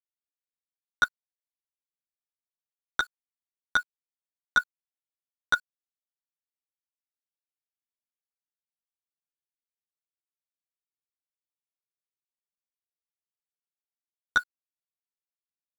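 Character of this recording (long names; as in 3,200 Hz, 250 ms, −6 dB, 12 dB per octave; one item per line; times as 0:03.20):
chopped level 0.82 Hz, depth 65%, duty 85%
a quantiser's noise floor 8 bits, dither none
a shimmering, thickened sound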